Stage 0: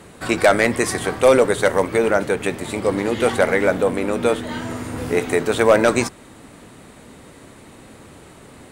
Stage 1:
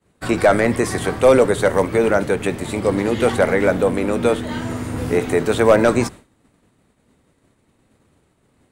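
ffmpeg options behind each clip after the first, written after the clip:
ffmpeg -i in.wav -filter_complex "[0:a]agate=range=-33dB:threshold=-30dB:ratio=3:detection=peak,lowshelf=frequency=230:gain=6,acrossover=split=530|1700[link_01][link_02][link_03];[link_03]alimiter=limit=-19dB:level=0:latency=1:release=33[link_04];[link_01][link_02][link_04]amix=inputs=3:normalize=0" out.wav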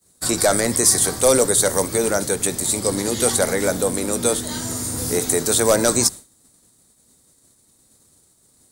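ffmpeg -i in.wav -af "aexciter=amount=10.1:drive=4.4:freq=4000,volume=-4.5dB" out.wav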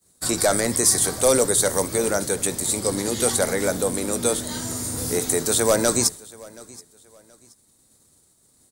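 ffmpeg -i in.wav -af "aecho=1:1:726|1452:0.075|0.0225,volume=-2.5dB" out.wav

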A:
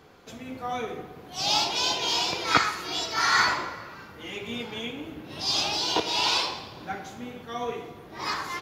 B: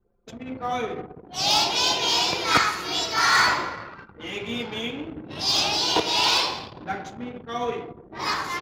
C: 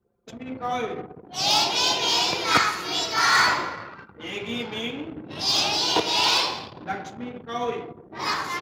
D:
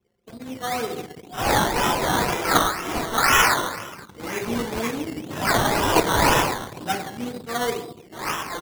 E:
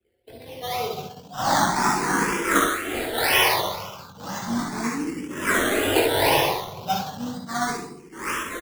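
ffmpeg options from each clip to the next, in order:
ffmpeg -i in.wav -filter_complex "[0:a]anlmdn=0.251,asplit=2[link_01][link_02];[link_02]aeval=exprs='0.126*(abs(mod(val(0)/0.126+3,4)-2)-1)':channel_layout=same,volume=-4.5dB[link_03];[link_01][link_03]amix=inputs=2:normalize=0" out.wav
ffmpeg -i in.wav -af "highpass=81" out.wav
ffmpeg -i in.wav -af "equalizer=frequency=16000:width_type=o:width=1.3:gain=-13,dynaudnorm=framelen=210:gausssize=11:maxgain=5dB,acrusher=samples=14:mix=1:aa=0.000001:lfo=1:lforange=8.4:lforate=2" out.wav
ffmpeg -i in.wav -filter_complex "[0:a]acrossover=split=120|1300|7300[link_01][link_02][link_03][link_04];[link_01]acompressor=threshold=-43dB:ratio=6[link_05];[link_05][link_02][link_03][link_04]amix=inputs=4:normalize=0,aecho=1:1:21|61|72:0.562|0.562|0.473,asplit=2[link_06][link_07];[link_07]afreqshift=0.34[link_08];[link_06][link_08]amix=inputs=2:normalize=1" out.wav

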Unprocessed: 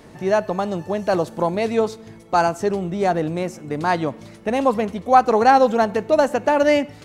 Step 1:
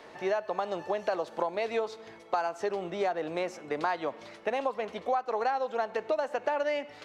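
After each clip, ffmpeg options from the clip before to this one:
ffmpeg -i in.wav -filter_complex "[0:a]acrossover=split=400 5300:gain=0.1 1 0.178[link_01][link_02][link_03];[link_01][link_02][link_03]amix=inputs=3:normalize=0,acompressor=threshold=-26dB:ratio=12" out.wav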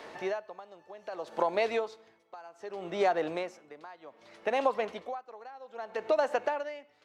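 ffmpeg -i in.wav -af "lowshelf=frequency=190:gain=-4.5,aeval=exprs='val(0)*pow(10,-22*(0.5-0.5*cos(2*PI*0.64*n/s))/20)':channel_layout=same,volume=4dB" out.wav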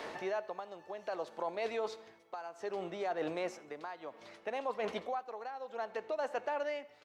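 ffmpeg -i in.wav -af "areverse,acompressor=threshold=-36dB:ratio=16,areverse,aecho=1:1:83|166|249:0.0631|0.0341|0.0184,volume=3.5dB" out.wav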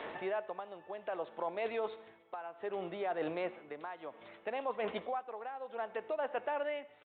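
ffmpeg -i in.wav -af "aresample=8000,aresample=44100" out.wav

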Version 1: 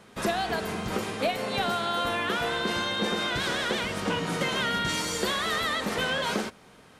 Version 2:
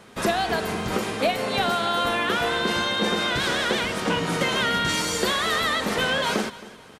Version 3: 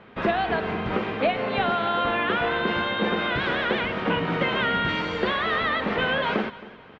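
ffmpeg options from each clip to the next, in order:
ffmpeg -i in.wav -af "bandreject=frequency=50:width_type=h:width=6,bandreject=frequency=100:width_type=h:width=6,bandreject=frequency=150:width_type=h:width=6,bandreject=frequency=200:width_type=h:width=6,aecho=1:1:268|536|804:0.119|0.0428|0.0154,volume=4.5dB" out.wav
ffmpeg -i in.wav -af "lowpass=frequency=3000:width=0.5412,lowpass=frequency=3000:width=1.3066" out.wav

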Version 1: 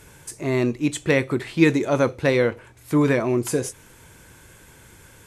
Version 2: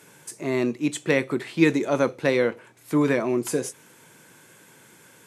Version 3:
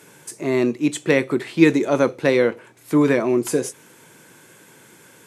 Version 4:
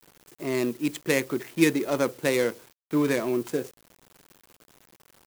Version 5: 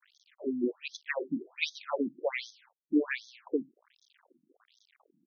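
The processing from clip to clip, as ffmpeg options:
ffmpeg -i in.wav -af "highpass=frequency=150:width=0.5412,highpass=frequency=150:width=1.3066,volume=-2dB" out.wav
ffmpeg -i in.wav -af "equalizer=frequency=360:width=1.5:gain=2.5,volume=3dB" out.wav
ffmpeg -i in.wav -af "adynamicsmooth=sensitivity=3.5:basefreq=790,acrusher=bits=7:mix=0:aa=0.000001,crystalizer=i=2.5:c=0,volume=-7.5dB" out.wav
ffmpeg -i in.wav -af "afftfilt=real='re*between(b*sr/1024,220*pow(4700/220,0.5+0.5*sin(2*PI*1.3*pts/sr))/1.41,220*pow(4700/220,0.5+0.5*sin(2*PI*1.3*pts/sr))*1.41)':imag='im*between(b*sr/1024,220*pow(4700/220,0.5+0.5*sin(2*PI*1.3*pts/sr))/1.41,220*pow(4700/220,0.5+0.5*sin(2*PI*1.3*pts/sr))*1.41)':win_size=1024:overlap=0.75" out.wav

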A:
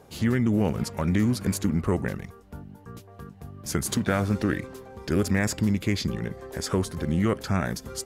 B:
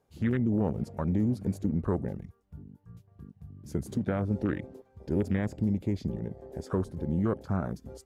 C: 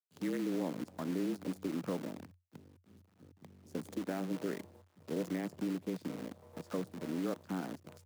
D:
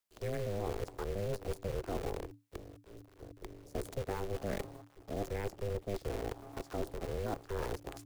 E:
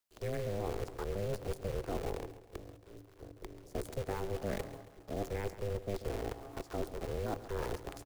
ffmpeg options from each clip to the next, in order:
ffmpeg -i in.wav -filter_complex "[0:a]afwtdn=0.0282,acrossover=split=850[link_01][link_02];[link_02]alimiter=level_in=2dB:limit=-24dB:level=0:latency=1:release=212,volume=-2dB[link_03];[link_01][link_03]amix=inputs=2:normalize=0,volume=-4dB" out.wav
ffmpeg -i in.wav -af "acrusher=bits=7:dc=4:mix=0:aa=0.000001,afreqshift=88,volume=-8.5dB" out.wav
ffmpeg -i in.wav -af "areverse,acompressor=threshold=-42dB:ratio=6,areverse,aeval=exprs='val(0)*sin(2*PI*200*n/s)':channel_layout=same,volume=11.5dB" out.wav
ffmpeg -i in.wav -af "aecho=1:1:137|274|411|548|685:0.2|0.0958|0.046|0.0221|0.0106" out.wav

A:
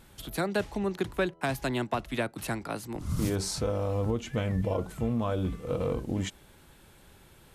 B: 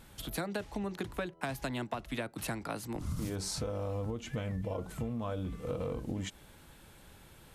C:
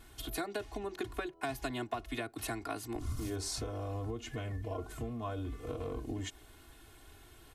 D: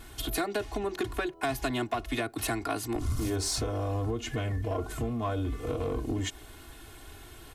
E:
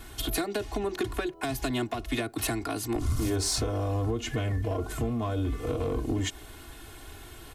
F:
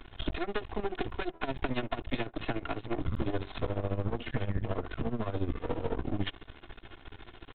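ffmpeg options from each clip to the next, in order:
ffmpeg -i in.wav -af "bandreject=frequency=380:width=12,acompressor=threshold=-33dB:ratio=6" out.wav
ffmpeg -i in.wav -af "aecho=1:1:2.8:0.96,volume=-3.5dB" out.wav
ffmpeg -i in.wav -af "asoftclip=type=tanh:threshold=-29.5dB,volume=8.5dB" out.wav
ffmpeg -i in.wav -filter_complex "[0:a]acrossover=split=460|3000[link_01][link_02][link_03];[link_02]acompressor=threshold=-36dB:ratio=6[link_04];[link_01][link_04][link_03]amix=inputs=3:normalize=0,volume=2.5dB" out.wav
ffmpeg -i in.wav -af "aresample=8000,aeval=exprs='max(val(0),0)':channel_layout=same,aresample=44100,tremolo=f=14:d=0.79,volume=4dB" out.wav

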